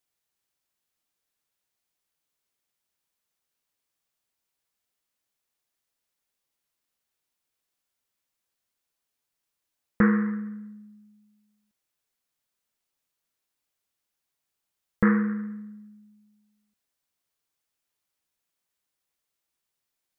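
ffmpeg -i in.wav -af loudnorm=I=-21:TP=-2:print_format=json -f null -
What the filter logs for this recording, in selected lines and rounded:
"input_i" : "-25.7",
"input_tp" : "-9.5",
"input_lra" : "0.3",
"input_thresh" : "-39.0",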